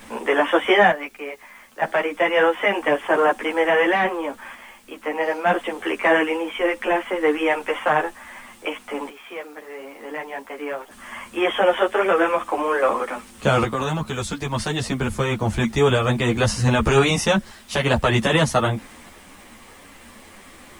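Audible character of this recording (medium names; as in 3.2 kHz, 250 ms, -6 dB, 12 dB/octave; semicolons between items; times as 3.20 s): random-step tremolo 1.1 Hz, depth 85%; a quantiser's noise floor 10-bit, dither triangular; a shimmering, thickened sound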